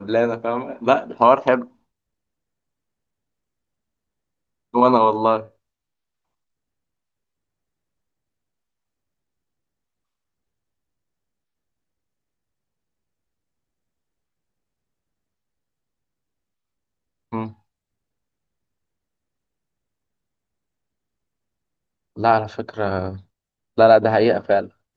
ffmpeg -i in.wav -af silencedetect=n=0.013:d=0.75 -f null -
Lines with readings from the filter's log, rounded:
silence_start: 1.65
silence_end: 4.74 | silence_duration: 3.09
silence_start: 5.46
silence_end: 17.32 | silence_duration: 11.86
silence_start: 17.51
silence_end: 22.16 | silence_duration: 4.65